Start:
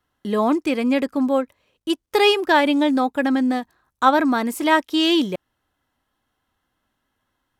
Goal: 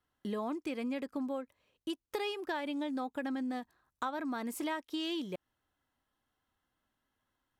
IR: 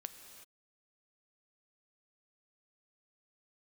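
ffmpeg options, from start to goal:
-af "acompressor=threshold=-25dB:ratio=6,volume=-9dB"

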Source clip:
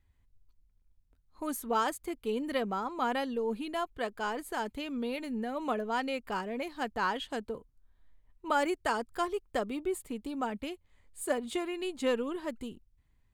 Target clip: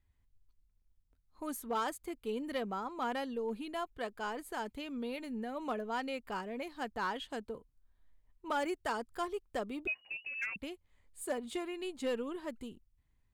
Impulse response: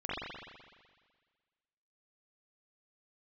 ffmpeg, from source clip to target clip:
-filter_complex "[0:a]asettb=1/sr,asplit=3[a][b][c];[a]atrim=end=9.874[d];[b]atrim=start=9.87:end=10.56,asetpts=PTS-STARTPTS,afade=t=in:d=0.004:c=qsin,afade=t=out:st=0.686:d=0.004:c=qsin,lowpass=f=2.5k:t=q:w=0.5098,lowpass=f=2.5k:t=q:w=0.6013,lowpass=f=2.5k:t=q:w=0.9,lowpass=f=2.5k:t=q:w=2.563,afreqshift=-2900[e];[c]atrim=start=10.556[f];[d][e]acrossfade=d=0.004:c1=hsin:c2=qsin[g];[g][f]acrossfade=d=0.004:c1=qsin:c2=hsin,asplit=2[h][i];[i]aeval=exprs='0.0596*(abs(mod(val(0)/0.0596+3,4)-2)-1)':c=same,volume=-5dB[j];[h][j]amix=inputs=2:normalize=0,volume=-8.5dB"

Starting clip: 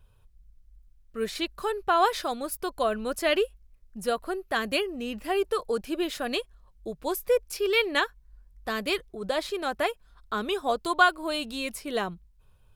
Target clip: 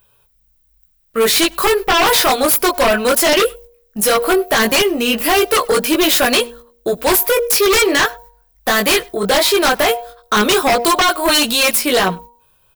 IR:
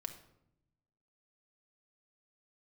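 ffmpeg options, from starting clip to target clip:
-filter_complex "[0:a]acontrast=63,aemphasis=mode=production:type=riaa,agate=range=-13dB:threshold=-46dB:ratio=16:detection=peak,equalizer=f=11k:t=o:w=2.4:g=-9.5,bandreject=f=236.8:t=h:w=4,bandreject=f=473.6:t=h:w=4,bandreject=f=710.4:t=h:w=4,bandreject=f=947.2:t=h:w=4,alimiter=limit=-14dB:level=0:latency=1:release=78,flanger=delay=16:depth=4.1:speed=0.16,aeval=exprs='0.2*sin(PI/2*3.55*val(0)/0.2)':c=same,asplit=2[a][b];[b]adelay=99.13,volume=-27dB,highshelf=f=4k:g=-2.23[c];[a][c]amix=inputs=2:normalize=0,volume=5dB"

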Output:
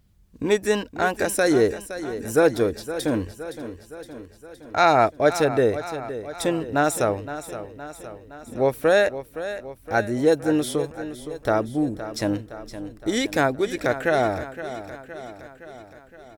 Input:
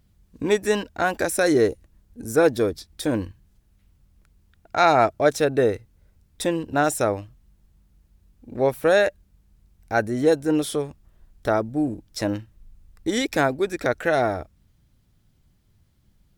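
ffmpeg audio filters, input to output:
-af "aecho=1:1:516|1032|1548|2064|2580|3096|3612:0.237|0.14|0.0825|0.0487|0.0287|0.017|0.01"

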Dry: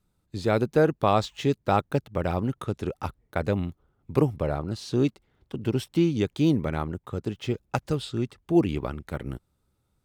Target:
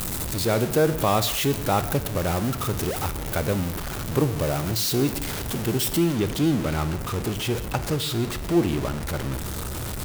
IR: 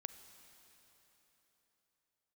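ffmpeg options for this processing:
-filter_complex "[0:a]aeval=exprs='val(0)+0.5*0.0668*sgn(val(0))':c=same,asetnsamples=n=441:p=0,asendcmd='5.97 highshelf g 3.5',highshelf=f=7.8k:g=12[a];[1:a]atrim=start_sample=2205,afade=t=out:st=0.4:d=0.01,atrim=end_sample=18081,asetrate=74970,aresample=44100[b];[a][b]afir=irnorm=-1:irlink=0,volume=7dB"

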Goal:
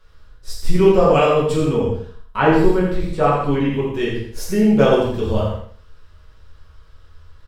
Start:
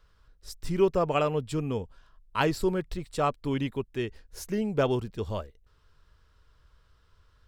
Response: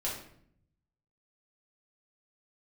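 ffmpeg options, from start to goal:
-filter_complex "[0:a]aecho=1:1:84|168|252|336:0.447|0.138|0.0429|0.0133,asettb=1/sr,asplit=3[a][b][c];[a]atrim=end=1.734[d];[b]atrim=start=1.73:end=3.95,asetpts=PTS-STARTPTS,afade=t=in:d=0.004:c=qsin,afade=t=out:st=2.216:d=0.004:c=qsin,acrossover=split=2600[e][f];[f]acompressor=threshold=-54dB:ratio=4:attack=1:release=60[g];[e][g]amix=inputs=2:normalize=0[h];[c]atrim=start=3.946[i];[d][h]acrossfade=d=0.004:c1=hsin:c2=qsin[j];[j][i]acrossfade=d=0.004:c1=qsin:c2=hsin[k];[1:a]atrim=start_sample=2205,afade=t=out:st=0.19:d=0.01,atrim=end_sample=8820,asetrate=36162,aresample=44100[l];[k][l]afir=irnorm=-1:irlink=0,volume=5.5dB"

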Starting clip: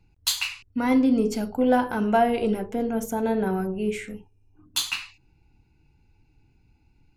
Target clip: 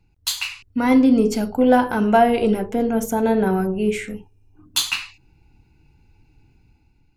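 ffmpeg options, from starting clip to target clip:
-af "dynaudnorm=f=160:g=7:m=6dB"

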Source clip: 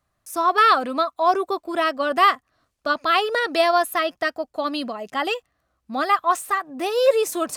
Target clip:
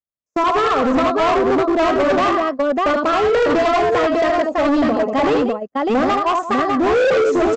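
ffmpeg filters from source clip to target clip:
-filter_complex "[0:a]lowshelf=f=330:g=7,acompressor=threshold=-19dB:ratio=4,equalizer=f=250:t=o:w=1:g=9,equalizer=f=500:t=o:w=1:g=10,equalizer=f=1k:t=o:w=1:g=5,equalizer=f=4k:t=o:w=1:g=-5,asplit=2[a][b];[b]aecho=0:1:40|77|100|188|600:0.112|0.596|0.126|0.282|0.668[c];[a][c]amix=inputs=2:normalize=0,agate=range=-41dB:threshold=-22dB:ratio=16:detection=peak,aresample=16000,asoftclip=type=hard:threshold=-13dB,aresample=44100"

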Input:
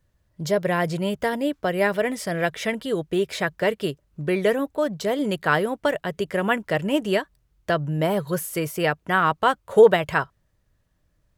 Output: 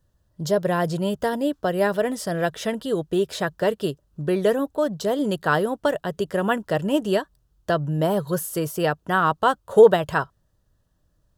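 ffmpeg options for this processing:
-af "equalizer=f=2.2k:w=3.5:g=-14.5,volume=1dB"

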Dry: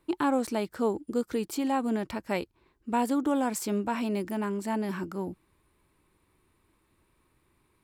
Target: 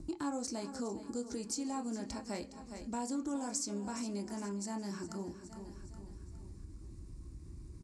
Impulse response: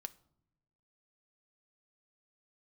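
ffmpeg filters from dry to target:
-filter_complex "[0:a]acrossover=split=320|4200[a][b][c];[a]acompressor=mode=upward:threshold=-37dB:ratio=2.5[d];[b]asplit=2[e][f];[f]adelay=25,volume=-3dB[g];[e][g]amix=inputs=2:normalize=0[h];[c]crystalizer=i=6:c=0[i];[d][h][i]amix=inputs=3:normalize=0,highpass=41,aemphasis=mode=reproduction:type=bsi,aexciter=amount=5.7:drive=7.5:freq=4.8k,lowpass=f=6.4k:w=0.5412,lowpass=f=6.4k:w=1.3066,aecho=1:1:412|824|1236|1648:0.178|0.08|0.036|0.0162[j];[1:a]atrim=start_sample=2205,asetrate=74970,aresample=44100[k];[j][k]afir=irnorm=-1:irlink=0,acompressor=threshold=-55dB:ratio=2,volume=7.5dB"

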